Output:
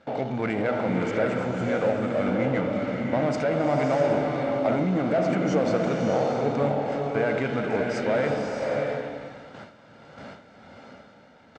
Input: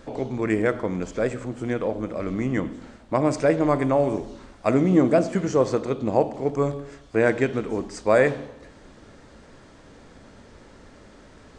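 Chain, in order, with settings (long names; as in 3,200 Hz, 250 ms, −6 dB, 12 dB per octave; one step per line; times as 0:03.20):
noise gate with hold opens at −36 dBFS
comb filter 1.4 ms, depth 55%
brickwall limiter −17.5 dBFS, peak gain reduction 11.5 dB
power curve on the samples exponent 0.7
band-pass filter 160–3,600 Hz
slow-attack reverb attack 640 ms, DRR 1 dB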